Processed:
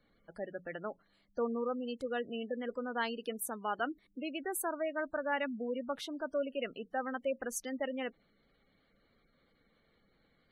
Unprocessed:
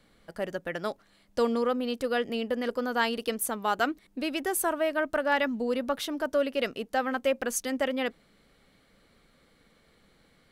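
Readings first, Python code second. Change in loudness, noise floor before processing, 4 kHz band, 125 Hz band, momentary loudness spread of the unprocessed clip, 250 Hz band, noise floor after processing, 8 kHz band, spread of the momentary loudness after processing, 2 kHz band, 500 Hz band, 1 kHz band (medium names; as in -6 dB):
-8.5 dB, -64 dBFS, -10.5 dB, no reading, 8 LU, -8.0 dB, -72 dBFS, -8.5 dB, 8 LU, -8.5 dB, -8.0 dB, -8.5 dB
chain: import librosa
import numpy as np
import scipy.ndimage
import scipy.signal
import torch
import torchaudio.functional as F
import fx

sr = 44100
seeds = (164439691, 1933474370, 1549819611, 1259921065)

y = fx.spec_gate(x, sr, threshold_db=-20, keep='strong')
y = fx.hum_notches(y, sr, base_hz=60, count=3)
y = y * librosa.db_to_amplitude(-8.0)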